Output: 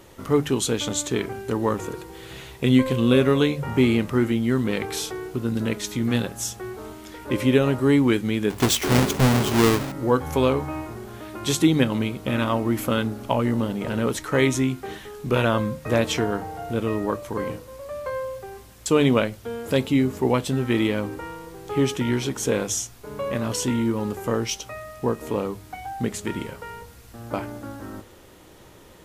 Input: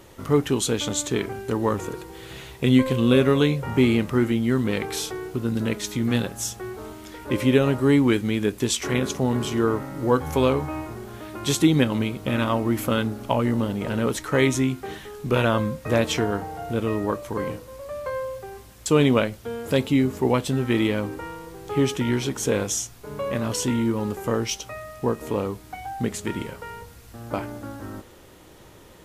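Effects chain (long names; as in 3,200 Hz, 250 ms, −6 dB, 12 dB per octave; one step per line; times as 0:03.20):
0:08.50–0:09.92: each half-wave held at its own peak
mains-hum notches 50/100/150 Hz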